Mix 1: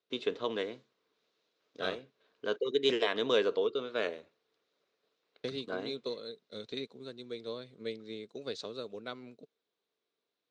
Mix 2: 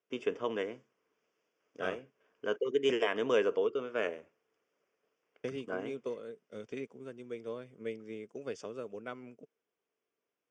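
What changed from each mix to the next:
master: add Butterworth band-stop 4 kHz, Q 1.9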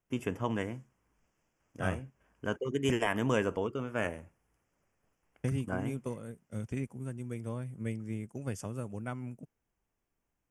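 master: remove cabinet simulation 370–5600 Hz, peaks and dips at 440 Hz +9 dB, 850 Hz -8 dB, 1.8 kHz -3 dB, 3.8 kHz +8 dB

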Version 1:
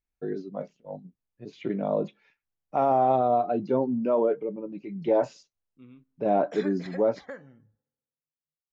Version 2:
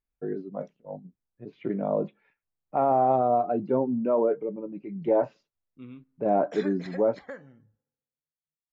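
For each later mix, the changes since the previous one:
first voice: add low-pass 1.9 kHz 12 dB/octave; second voice +6.5 dB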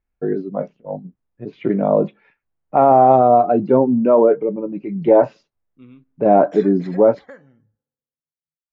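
first voice +11.0 dB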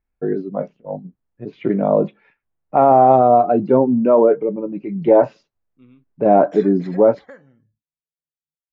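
second voice -4.5 dB; reverb: off

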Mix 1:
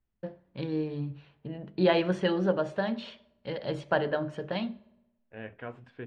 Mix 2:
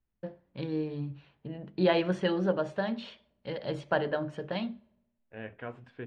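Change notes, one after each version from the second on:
first voice: send -7.0 dB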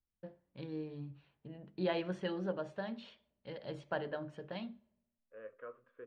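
first voice -9.5 dB; second voice: add two resonant band-passes 790 Hz, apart 1.2 oct

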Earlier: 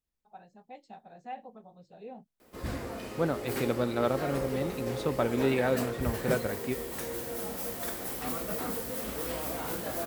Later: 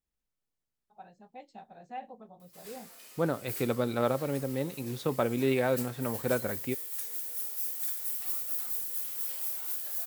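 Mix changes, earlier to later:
first voice: entry +0.65 s; background: add differentiator

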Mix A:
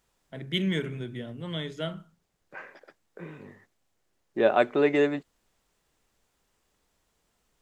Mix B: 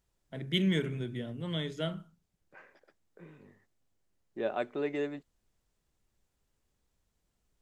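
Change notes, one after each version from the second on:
second voice -9.5 dB; master: add peaking EQ 1.3 kHz -3 dB 2.9 oct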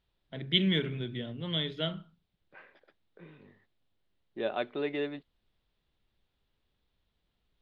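master: add resonant high shelf 5.2 kHz -13 dB, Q 3

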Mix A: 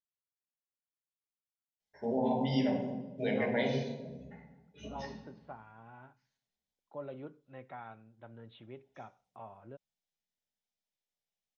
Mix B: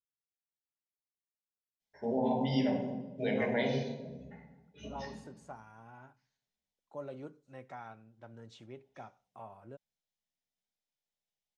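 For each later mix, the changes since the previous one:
second voice: remove steep low-pass 3.9 kHz 96 dB/octave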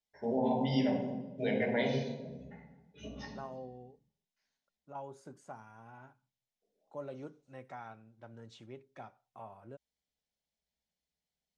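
first voice: entry -1.80 s

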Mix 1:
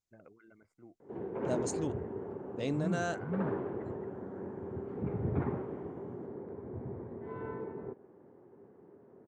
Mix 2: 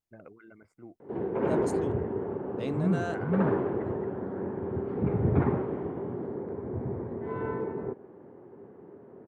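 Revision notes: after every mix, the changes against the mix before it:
first voice +7.5 dB; second voice: remove resonant low-pass 6.9 kHz, resonance Q 2.6; background +8.0 dB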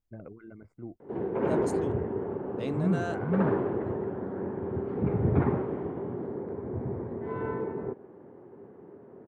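first voice: add tilt EQ -3.5 dB/octave

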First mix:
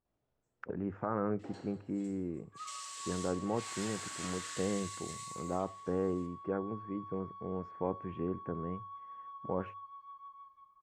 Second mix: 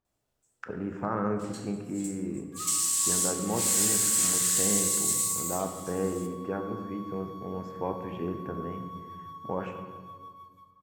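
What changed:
speech: send on; second sound: remove distance through air 150 m; master: remove tape spacing loss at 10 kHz 28 dB

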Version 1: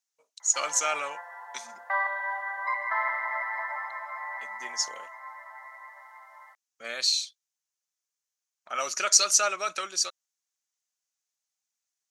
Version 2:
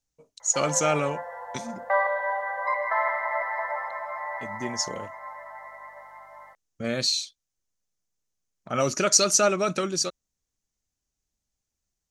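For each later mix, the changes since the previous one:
background: add peaking EQ 490 Hz +10.5 dB 0.45 oct; master: remove high-pass 1 kHz 12 dB/octave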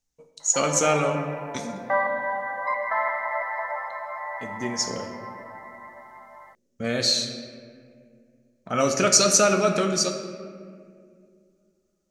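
reverb: on, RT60 2.2 s

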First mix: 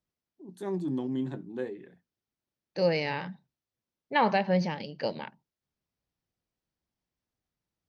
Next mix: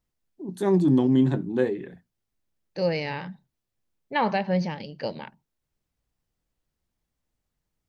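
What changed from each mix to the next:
first voice +10.5 dB; master: remove high-pass 150 Hz 6 dB/octave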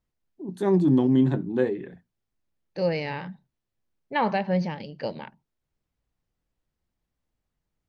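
master: add treble shelf 5.5 kHz -8.5 dB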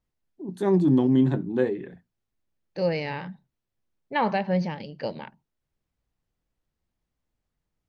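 no change

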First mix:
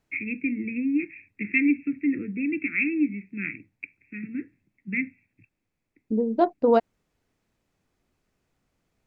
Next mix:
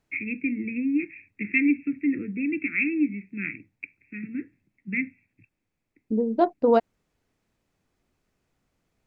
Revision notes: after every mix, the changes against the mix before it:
no change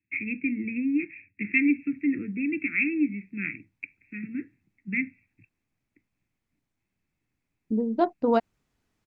second voice: entry +1.60 s; master: add peaking EQ 520 Hz -5.5 dB 0.85 oct

